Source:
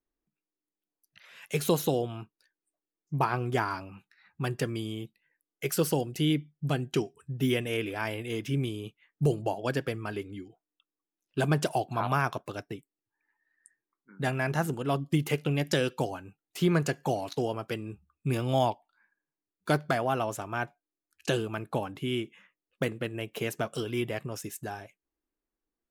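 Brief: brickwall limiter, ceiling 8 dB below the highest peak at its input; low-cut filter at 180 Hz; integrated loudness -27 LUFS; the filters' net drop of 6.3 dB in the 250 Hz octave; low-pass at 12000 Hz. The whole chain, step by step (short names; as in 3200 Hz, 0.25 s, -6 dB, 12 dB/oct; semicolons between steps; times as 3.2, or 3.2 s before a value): HPF 180 Hz; LPF 12000 Hz; bell 250 Hz -7.5 dB; gain +8.5 dB; limiter -12 dBFS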